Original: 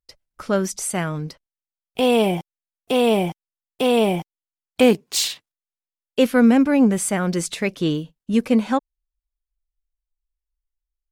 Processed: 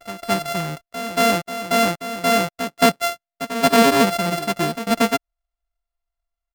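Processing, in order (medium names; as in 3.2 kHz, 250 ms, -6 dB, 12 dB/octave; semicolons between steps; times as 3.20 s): sorted samples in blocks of 64 samples; peaking EQ 1.6 kHz +3 dB 2.8 oct; on a send: reverse echo 380 ms -11.5 dB; on the sum: tempo 1.7×; trim -1 dB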